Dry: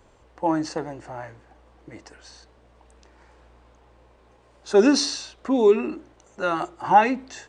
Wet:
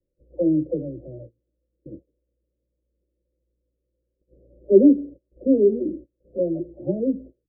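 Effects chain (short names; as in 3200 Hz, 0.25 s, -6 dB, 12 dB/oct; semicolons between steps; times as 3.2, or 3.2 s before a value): spectral delay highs early, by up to 0.644 s; gate -43 dBFS, range -26 dB; steep low-pass 580 Hz 96 dB/oct; gain +6 dB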